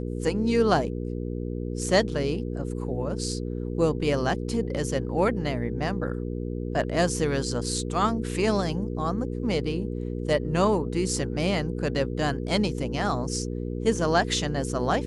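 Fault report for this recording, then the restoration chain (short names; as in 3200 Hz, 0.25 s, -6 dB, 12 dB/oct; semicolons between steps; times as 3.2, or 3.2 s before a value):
hum 60 Hz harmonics 8 -31 dBFS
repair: de-hum 60 Hz, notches 8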